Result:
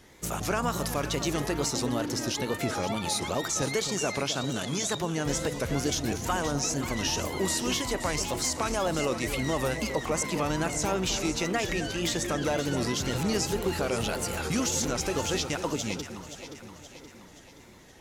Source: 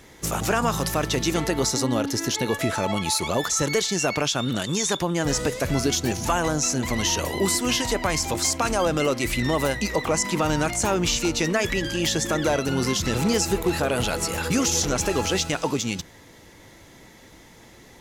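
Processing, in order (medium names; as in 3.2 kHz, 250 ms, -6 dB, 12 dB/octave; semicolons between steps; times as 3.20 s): wow and flutter 110 cents; echo whose repeats swap between lows and highs 262 ms, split 840 Hz, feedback 72%, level -8.5 dB; trim -6 dB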